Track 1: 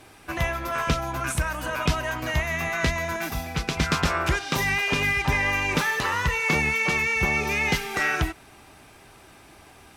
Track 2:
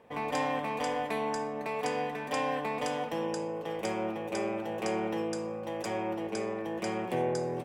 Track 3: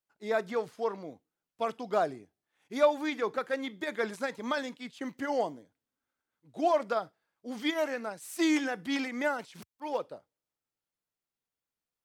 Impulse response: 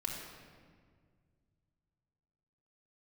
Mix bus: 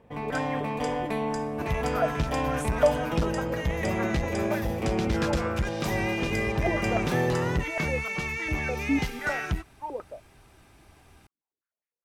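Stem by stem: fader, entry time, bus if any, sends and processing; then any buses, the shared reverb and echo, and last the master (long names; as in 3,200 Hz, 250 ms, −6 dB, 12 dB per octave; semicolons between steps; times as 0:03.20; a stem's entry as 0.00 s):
−11.5 dB, 1.30 s, no send, no processing
−2.5 dB, 0.00 s, no send, low-shelf EQ 210 Hz +7.5 dB
+2.5 dB, 0.00 s, no send, band-pass on a step sequencer 9.9 Hz 280–2,000 Hz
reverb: not used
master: low-shelf EQ 150 Hz +11 dB; automatic gain control gain up to 3 dB; saturating transformer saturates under 230 Hz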